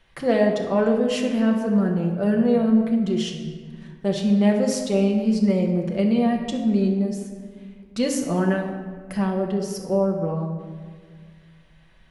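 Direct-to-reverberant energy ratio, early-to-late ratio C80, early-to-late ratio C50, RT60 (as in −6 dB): 0.5 dB, 7.0 dB, 5.0 dB, 1.7 s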